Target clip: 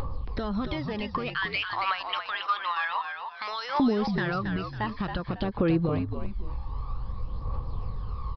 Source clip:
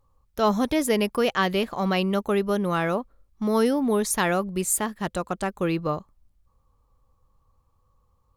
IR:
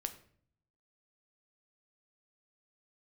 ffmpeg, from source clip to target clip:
-filter_complex "[0:a]asettb=1/sr,asplit=3[a][b][c];[a]atrim=end=1.344[d];[b]atrim=start=1.34:end=3.8,asetpts=PTS-STARTPTS,afade=t=in:d=0.004:c=qsin,afade=t=out:st=2.456:d=0.004:c=qsin,highpass=f=1.1k:w=0.5412,highpass=f=1.1k:w=1.3066[e];[c]atrim=start=3.796[f];[d][e]acrossfade=d=0.004:c1=hsin:c2=qsin[g];[g][f]acrossfade=d=0.004:c1=qsin:c2=hsin,acompressor=threshold=-30dB:ratio=6,alimiter=level_in=9dB:limit=-24dB:level=0:latency=1:release=466,volume=-9dB,acompressor=mode=upward:threshold=-35dB:ratio=2.5,aeval=exprs='0.0891*sin(PI/2*2*val(0)/0.0891)':c=same,aphaser=in_gain=1:out_gain=1:delay=1.2:decay=0.61:speed=0.53:type=triangular,asplit=5[h][i][j][k][l];[i]adelay=275,afreqshift=-64,volume=-6.5dB[m];[j]adelay=550,afreqshift=-128,volume=-15.9dB[n];[k]adelay=825,afreqshift=-192,volume=-25.2dB[o];[l]adelay=1100,afreqshift=-256,volume=-34.6dB[p];[h][m][n][o][p]amix=inputs=5:normalize=0,aresample=11025,aresample=44100"

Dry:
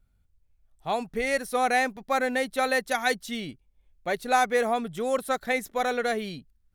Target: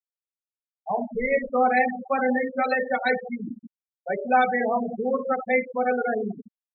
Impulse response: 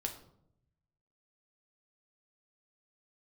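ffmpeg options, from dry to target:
-filter_complex "[1:a]atrim=start_sample=2205,asetrate=28224,aresample=44100[a];[0:a][a]afir=irnorm=-1:irlink=0,afftfilt=real='re*gte(hypot(re,im),0.158)':imag='im*gte(hypot(re,im),0.158)':win_size=1024:overlap=0.75"

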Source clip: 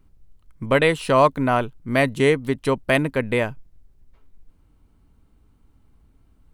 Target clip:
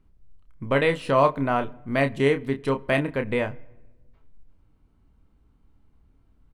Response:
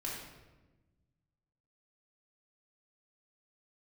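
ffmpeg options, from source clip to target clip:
-filter_complex "[0:a]highshelf=f=6.5k:g=-11.5,asplit=2[a][b];[b]adelay=29,volume=-8dB[c];[a][c]amix=inputs=2:normalize=0,asplit=2[d][e];[1:a]atrim=start_sample=2205,highshelf=f=3.9k:g=-7,adelay=27[f];[e][f]afir=irnorm=-1:irlink=0,volume=-23dB[g];[d][g]amix=inputs=2:normalize=0,volume=-4dB"

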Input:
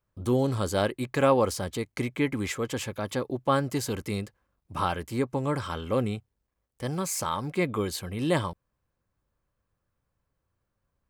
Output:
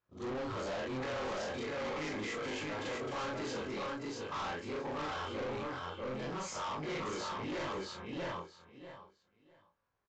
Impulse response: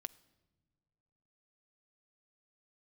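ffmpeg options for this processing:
-filter_complex "[0:a]afftfilt=real='re':imag='-im':win_size=4096:overlap=0.75,asplit=2[a][b];[b]highpass=f=720:p=1,volume=20dB,asoftclip=type=tanh:threshold=-14dB[c];[a][c]amix=inputs=2:normalize=0,lowpass=f=2.2k:p=1,volume=-6dB,aecho=1:1:710|1420|2130:0.631|0.12|0.0228,atempo=1.1,flanger=delay=19:depth=4.1:speed=0.41,asoftclip=type=hard:threshold=-31.5dB,volume=-4.5dB" -ar 16000 -c:a aac -b:a 64k

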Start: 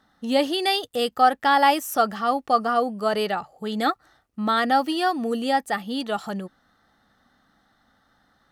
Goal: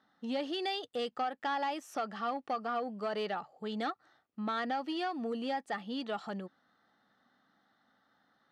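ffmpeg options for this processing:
-af "acompressor=threshold=-22dB:ratio=4,asoftclip=type=tanh:threshold=-19dB,highpass=170,lowpass=4.9k,volume=-7.5dB"

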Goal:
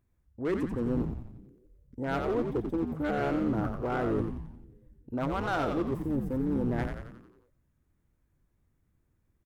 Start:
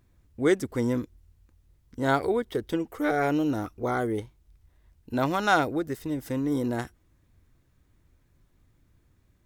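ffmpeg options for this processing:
-filter_complex "[0:a]afwtdn=0.0141,equalizer=f=4.2k:w=1:g=-7,areverse,acompressor=threshold=-35dB:ratio=4,areverse,asoftclip=type=hard:threshold=-31.5dB,asplit=8[a][b][c][d][e][f][g][h];[b]adelay=89,afreqshift=-88,volume=-5dB[i];[c]adelay=178,afreqshift=-176,volume=-10.2dB[j];[d]adelay=267,afreqshift=-264,volume=-15.4dB[k];[e]adelay=356,afreqshift=-352,volume=-20.6dB[l];[f]adelay=445,afreqshift=-440,volume=-25.8dB[m];[g]adelay=534,afreqshift=-528,volume=-31dB[n];[h]adelay=623,afreqshift=-616,volume=-36.2dB[o];[a][i][j][k][l][m][n][o]amix=inputs=8:normalize=0,volume=6.5dB"

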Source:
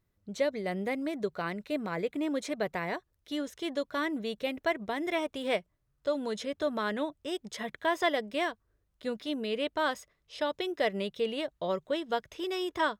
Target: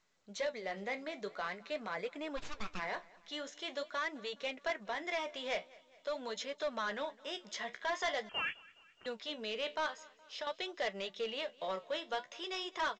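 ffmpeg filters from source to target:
-filter_complex "[0:a]highpass=f=220:w=0.5412,highpass=f=220:w=1.3066,equalizer=f=300:w=1.1:g=-14,asplit=3[a][b][c];[a]afade=t=out:st=2.36:d=0.02[d];[b]aeval=exprs='abs(val(0))':c=same,afade=t=in:st=2.36:d=0.02,afade=t=out:st=2.78:d=0.02[e];[c]afade=t=in:st=2.78:d=0.02[f];[d][e][f]amix=inputs=3:normalize=0,asettb=1/sr,asplit=3[g][h][i];[g]atrim=end=9.864[j];[h]atrim=start=9.86:end=10.47,asetpts=PTS-STARTPTS,afade=t=in:d=0.004:c=qsin,afade=t=out:st=0.606:d=0.004:c=qsin,acompressor=threshold=-39dB:ratio=6[k];[i]atrim=start=10.466[l];[j][k]acrossfade=d=0.004:c1=hsin:c2=qsin[m];[m][l]acrossfade=d=0.004:c1=qsin:c2=hsin,flanger=delay=6.6:depth=9.5:regen=-56:speed=0.46:shape=sinusoidal,asoftclip=type=tanh:threshold=-33dB,aecho=1:1:209|418|627|836:0.0708|0.0375|0.0199|0.0105,asettb=1/sr,asplit=3[n][o][p];[n]atrim=end=8.294[q];[o]atrim=start=8.29:end=9.06,asetpts=PTS-STARTPTS,afade=t=in:d=0.004:c=qsin,afade=t=out:st=0.766:d=0.004:c=qsin,lowpass=f=2.9k:t=q:w=0.5098,lowpass=f=2.9k:t=q:w=0.6013,lowpass=f=2.9k:t=q:w=0.9,lowpass=f=2.9k:t=q:w=2.563,afreqshift=-3400[r];[p]atrim=start=9.056[s];[q][r]acrossfade=d=0.004:c1=hsin:c2=qsin[t];[t][s]acrossfade=d=0.004:c1=qsin:c2=hsin,volume=4dB" -ar 16000 -c:a pcm_mulaw

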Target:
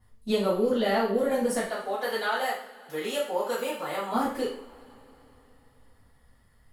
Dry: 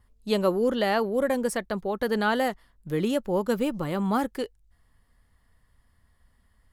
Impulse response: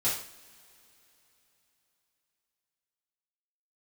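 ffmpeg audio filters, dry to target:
-filter_complex "[0:a]asplit=3[a][b][c];[a]afade=t=out:st=1.67:d=0.02[d];[b]highpass=660,afade=t=in:st=1.67:d=0.02,afade=t=out:st=4.13:d=0.02[e];[c]afade=t=in:st=4.13:d=0.02[f];[d][e][f]amix=inputs=3:normalize=0,acompressor=threshold=-28dB:ratio=2.5[g];[1:a]atrim=start_sample=2205[h];[g][h]afir=irnorm=-1:irlink=0,volume=-4dB"

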